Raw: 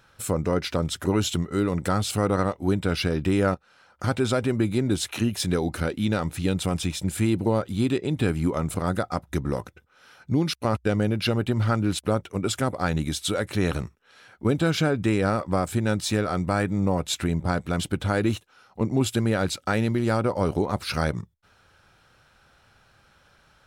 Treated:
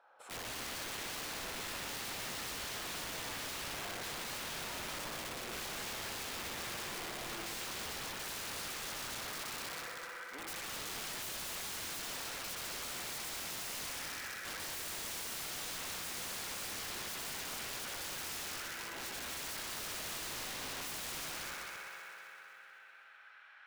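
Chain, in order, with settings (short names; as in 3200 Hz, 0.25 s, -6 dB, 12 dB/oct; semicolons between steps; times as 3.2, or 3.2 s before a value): HPF 490 Hz 12 dB/oct; limiter -21.5 dBFS, peak gain reduction 11 dB; spring tank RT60 3.4 s, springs 59 ms, chirp 35 ms, DRR -3 dB; band-pass sweep 750 Hz -> 1900 Hz, 7.13–8.76; wrapped overs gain 40.5 dB; on a send: split-band echo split 870 Hz, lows 0.112 s, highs 0.256 s, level -8 dB; on the sum: gain +2.5 dB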